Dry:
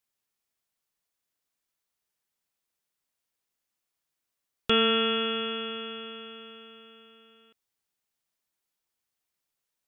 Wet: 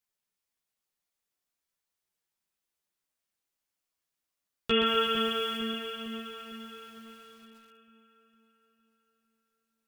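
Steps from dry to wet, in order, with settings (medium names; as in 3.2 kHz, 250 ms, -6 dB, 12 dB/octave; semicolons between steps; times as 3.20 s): 4.86–5.57 s: word length cut 8-bit, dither none; 6.32–6.87 s: hum notches 50/100/150/200/250/300/350/400/450 Hz; chorus voices 4, 0.42 Hz, delay 14 ms, depth 3.6 ms; on a send: two-band feedback delay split 2 kHz, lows 455 ms, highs 341 ms, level -9 dB; on the sum: bit-crushed delay 124 ms, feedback 55%, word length 9-bit, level -6 dB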